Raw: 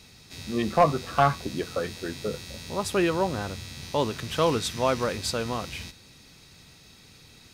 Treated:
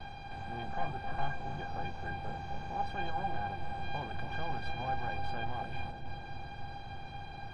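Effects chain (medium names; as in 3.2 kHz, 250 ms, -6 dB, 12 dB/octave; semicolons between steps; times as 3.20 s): spectral levelling over time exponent 0.4; de-hum 54.12 Hz, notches 21; reverb removal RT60 0.52 s; gate with hold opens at -23 dBFS; bass shelf 170 Hz +8.5 dB; overload inside the chain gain 13.5 dB; distance through air 390 m; feedback comb 800 Hz, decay 0.17 s, harmonics all, mix 100%; on a send: filtered feedback delay 281 ms, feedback 79%, low-pass 800 Hz, level -7 dB; on the sum: trim +7 dB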